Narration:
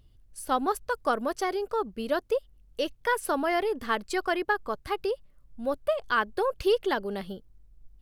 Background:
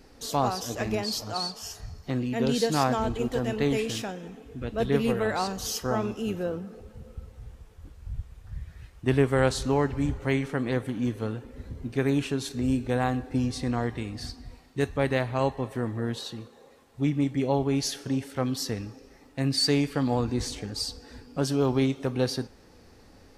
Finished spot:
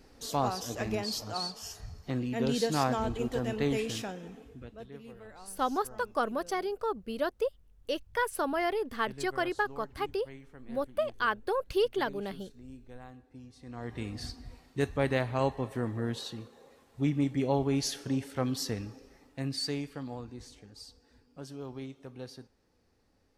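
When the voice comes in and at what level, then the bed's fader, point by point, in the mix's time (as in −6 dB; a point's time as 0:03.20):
5.10 s, −3.5 dB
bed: 0:04.43 −4 dB
0:04.91 −23 dB
0:13.56 −23 dB
0:14.03 −3 dB
0:18.96 −3 dB
0:20.41 −17.5 dB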